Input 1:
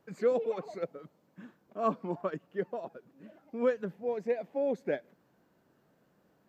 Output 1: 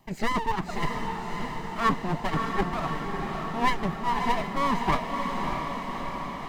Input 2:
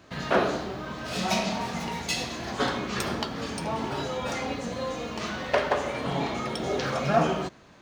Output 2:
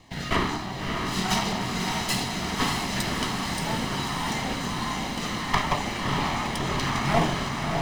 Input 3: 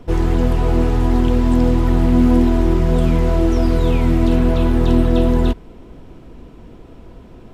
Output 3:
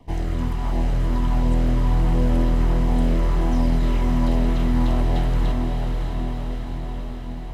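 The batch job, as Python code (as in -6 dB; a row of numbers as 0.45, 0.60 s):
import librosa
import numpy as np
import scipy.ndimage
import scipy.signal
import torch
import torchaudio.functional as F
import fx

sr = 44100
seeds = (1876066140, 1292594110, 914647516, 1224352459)

y = fx.lower_of_two(x, sr, delay_ms=0.99)
y = fx.filter_lfo_notch(y, sr, shape='saw_down', hz=1.4, low_hz=430.0, high_hz=1500.0, q=2.2)
y = fx.echo_diffused(y, sr, ms=614, feedback_pct=69, wet_db=-4.0)
y = librosa.util.normalize(y) * 10.0 ** (-9 / 20.0)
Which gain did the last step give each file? +11.5, +3.0, -7.5 dB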